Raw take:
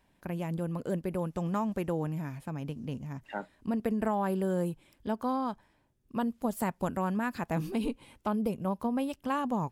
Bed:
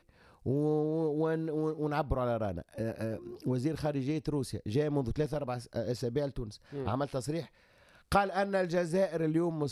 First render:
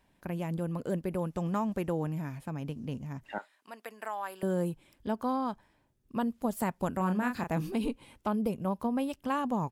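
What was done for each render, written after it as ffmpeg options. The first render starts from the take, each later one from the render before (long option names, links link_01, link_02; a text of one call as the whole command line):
ffmpeg -i in.wav -filter_complex "[0:a]asettb=1/sr,asplit=3[link_01][link_02][link_03];[link_01]atrim=end=3.384[link_04];[link_02]atrim=start=3.38:end=4.43,asetpts=PTS-STARTPTS,afade=type=in:duration=0.004:curve=qsin,afade=type=out:start_time=1.046:duration=0.004:curve=qsin,highpass=980[link_05];[link_03]atrim=start=4.426[link_06];[link_04][link_05]acrossfade=duration=0.004:curve1=hsin:curve2=qsin[link_07];[link_07][link_06]acrossfade=duration=0.004:curve1=qsin:curve2=hsin,asplit=3[link_08][link_09][link_10];[link_08]afade=type=out:start_time=6.99:duration=0.02[link_11];[link_09]asplit=2[link_12][link_13];[link_13]adelay=33,volume=-6dB[link_14];[link_12][link_14]amix=inputs=2:normalize=0,afade=type=in:start_time=6.99:duration=0.02,afade=type=out:start_time=7.51:duration=0.02[link_15];[link_10]afade=type=in:start_time=7.51:duration=0.02[link_16];[link_11][link_15][link_16]amix=inputs=3:normalize=0" out.wav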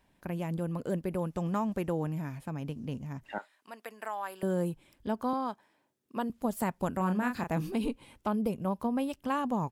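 ffmpeg -i in.wav -filter_complex "[0:a]asettb=1/sr,asplit=3[link_01][link_02][link_03];[link_01]atrim=end=5.334[link_04];[link_02]atrim=start=5.33:end=6.3,asetpts=PTS-STARTPTS,afade=type=in:duration=0.004:curve=qsin,afade=type=out:start_time=0.966:duration=0.004:curve=qsin,highpass=260[link_05];[link_03]atrim=start=6.296[link_06];[link_04][link_05]acrossfade=duration=0.004:curve1=hsin:curve2=qsin[link_07];[link_07][link_06]acrossfade=duration=0.004:curve1=qsin:curve2=hsin" out.wav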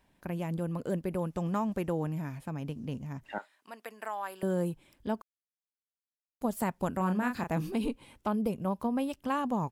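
ffmpeg -i in.wav -filter_complex "[0:a]asplit=3[link_01][link_02][link_03];[link_01]atrim=end=5.22,asetpts=PTS-STARTPTS,afade=type=out:start_time=5.216:duration=0.004:curve=hsin[link_04];[link_02]atrim=start=5.22:end=6.41,asetpts=PTS-STARTPTS,volume=0[link_05];[link_03]atrim=start=6.41,asetpts=PTS-STARTPTS,afade=type=in:duration=0.004:curve=hsin[link_06];[link_04][link_05][link_06]concat=n=3:v=0:a=1" out.wav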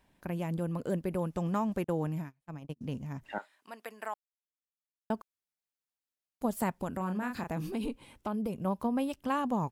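ffmpeg -i in.wav -filter_complex "[0:a]asettb=1/sr,asplit=3[link_01][link_02][link_03];[link_01]atrim=end=1.844[link_04];[link_02]atrim=start=1.84:end=2.81,asetpts=PTS-STARTPTS,afade=type=in:duration=0.004:curve=qsin,afade=type=out:start_time=0.966:duration=0.004:curve=qsin,agate=range=-35dB:threshold=-36dB:ratio=16:release=100:detection=peak[link_05];[link_03]atrim=start=2.806[link_06];[link_04][link_05]acrossfade=duration=0.004:curve1=hsin:curve2=qsin[link_07];[link_07][link_06]acrossfade=duration=0.004:curve1=qsin:curve2=hsin,asettb=1/sr,asplit=3[link_08][link_09][link_10];[link_08]atrim=end=6.774[link_11];[link_09]atrim=start=6.77:end=8.6,asetpts=PTS-STARTPTS,afade=type=in:duration=0.004:curve=qsin,afade=type=out:start_time=1.826:duration=0.004:curve=qsin,acompressor=threshold=-32dB:ratio=2:attack=3.2:release=140:knee=1:detection=peak[link_12];[link_10]atrim=start=8.596[link_13];[link_11][link_12]acrossfade=duration=0.004:curve1=hsin:curve2=qsin[link_14];[link_14][link_13]acrossfade=duration=0.004:curve1=qsin:curve2=hsin,asplit=3[link_15][link_16][link_17];[link_15]atrim=end=4.14,asetpts=PTS-STARTPTS,afade=type=out:start_time=4.136:duration=0.004:curve=hsin[link_18];[link_16]atrim=start=4.14:end=5.1,asetpts=PTS-STARTPTS,volume=0[link_19];[link_17]atrim=start=5.1,asetpts=PTS-STARTPTS,afade=type=in:duration=0.004:curve=hsin[link_20];[link_18][link_19][link_20]concat=n=3:v=0:a=1" out.wav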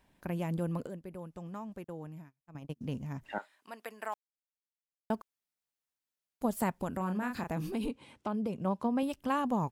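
ffmpeg -i in.wav -filter_complex "[0:a]asettb=1/sr,asplit=3[link_01][link_02][link_03];[link_01]atrim=end=4.124[link_04];[link_02]atrim=start=4.12:end=5.15,asetpts=PTS-STARTPTS,afade=type=in:duration=0.004:curve=qsin,afade=type=out:start_time=1.026:duration=0.004:curve=qsin,aeval=exprs='val(0)*gte(abs(val(0)),0.00355)':channel_layout=same[link_05];[link_03]atrim=start=5.146[link_06];[link_04][link_05]acrossfade=duration=0.004:curve1=hsin:curve2=qsin[link_07];[link_07][link_06]acrossfade=duration=0.004:curve1=qsin:curve2=hsin,asettb=1/sr,asplit=3[link_08][link_09][link_10];[link_08]atrim=end=7.914[link_11];[link_09]atrim=start=7.91:end=9.03,asetpts=PTS-STARTPTS,afade=type=in:duration=0.004:curve=qsin,afade=type=out:start_time=1.116:duration=0.004:curve=qsin,highpass=100,lowpass=7800[link_12];[link_10]atrim=start=9.026[link_13];[link_11][link_12]acrossfade=duration=0.004:curve1=hsin:curve2=qsin[link_14];[link_14][link_13]acrossfade=duration=0.004:curve1=qsin:curve2=hsin,asplit=3[link_15][link_16][link_17];[link_15]atrim=end=0.872[link_18];[link_16]atrim=start=0.868:end=2.552,asetpts=PTS-STARTPTS,volume=-11.5dB[link_19];[link_17]atrim=start=2.548[link_20];[link_18][link_19]acrossfade=duration=0.004:curve1=hsin:curve2=hsin[link_21];[link_21][link_20]acrossfade=duration=0.004:curve1=hsin:curve2=hsin" out.wav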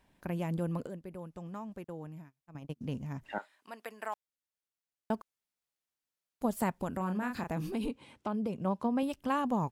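ffmpeg -i in.wav -af "highshelf=frequency=12000:gain=-3.5" out.wav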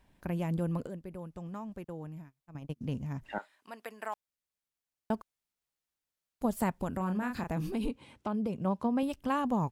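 ffmpeg -i in.wav -af "lowshelf=frequency=100:gain=8" out.wav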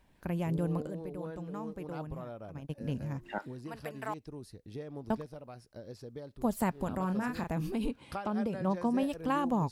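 ffmpeg -i in.wav -i bed.wav -filter_complex "[1:a]volume=-12.5dB[link_01];[0:a][link_01]amix=inputs=2:normalize=0" out.wav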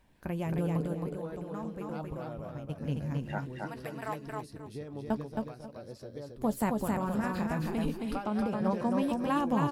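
ffmpeg -i in.wav -filter_complex "[0:a]asplit=2[link_01][link_02];[link_02]adelay=14,volume=-12dB[link_03];[link_01][link_03]amix=inputs=2:normalize=0,asplit=2[link_04][link_05];[link_05]aecho=0:1:269|538|807:0.708|0.156|0.0343[link_06];[link_04][link_06]amix=inputs=2:normalize=0" out.wav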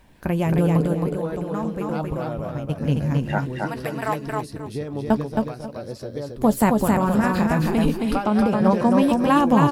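ffmpeg -i in.wav -af "volume=12dB" out.wav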